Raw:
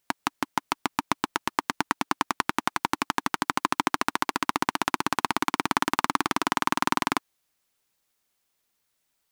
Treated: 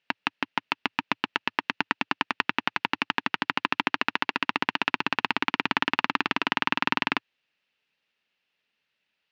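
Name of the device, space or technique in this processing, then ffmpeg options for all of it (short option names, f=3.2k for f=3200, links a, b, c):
guitar cabinet: -af "highpass=110,equalizer=f=110:t=q:w=4:g=-6,equalizer=f=330:t=q:w=4:g=-5,equalizer=f=730:t=q:w=4:g=-4,equalizer=f=1.1k:t=q:w=4:g=-5,equalizer=f=1.8k:t=q:w=4:g=4,equalizer=f=2.7k:t=q:w=4:g=10,lowpass=f=4.3k:w=0.5412,lowpass=f=4.3k:w=1.3066"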